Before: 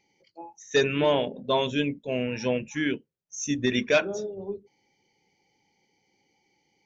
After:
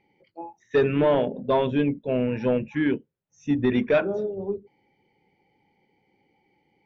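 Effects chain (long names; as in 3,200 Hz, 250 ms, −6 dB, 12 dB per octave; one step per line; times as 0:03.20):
dynamic equaliser 2,700 Hz, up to −4 dB, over −39 dBFS, Q 0.94
in parallel at −10.5 dB: sine wavefolder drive 7 dB, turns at −11.5 dBFS
on the sum: high-frequency loss of the air 460 metres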